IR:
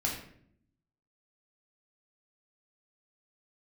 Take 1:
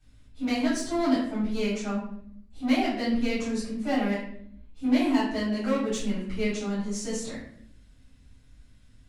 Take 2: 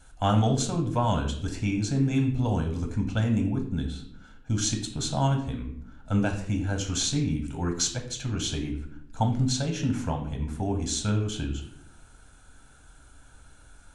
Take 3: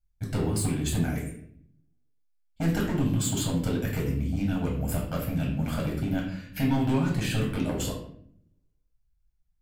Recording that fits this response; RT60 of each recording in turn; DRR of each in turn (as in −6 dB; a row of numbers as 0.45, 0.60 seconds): 3; 0.65, 0.65, 0.65 seconds; −12.0, 3.5, −2.5 decibels